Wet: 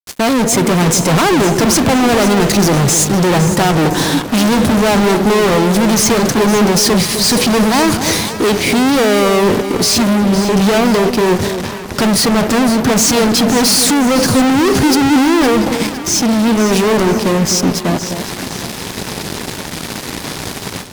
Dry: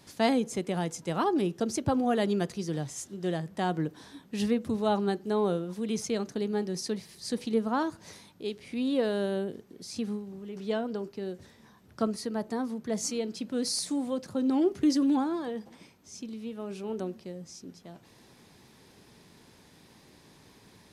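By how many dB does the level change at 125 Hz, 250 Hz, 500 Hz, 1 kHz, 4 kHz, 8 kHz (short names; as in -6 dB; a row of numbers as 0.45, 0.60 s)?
+22.0, +18.0, +17.5, +19.5, +24.0, +25.5 dB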